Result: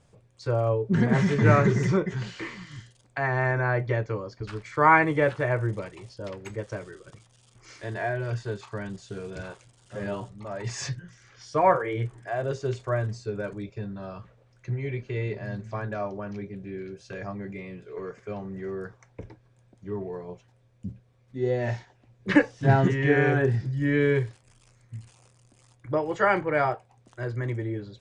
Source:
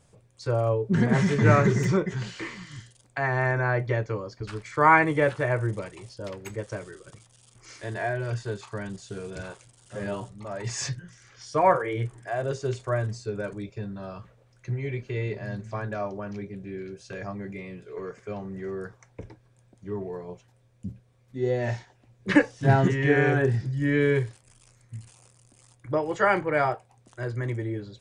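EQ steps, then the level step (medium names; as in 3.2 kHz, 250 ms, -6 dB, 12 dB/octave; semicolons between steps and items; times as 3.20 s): distance through air 53 m; 0.0 dB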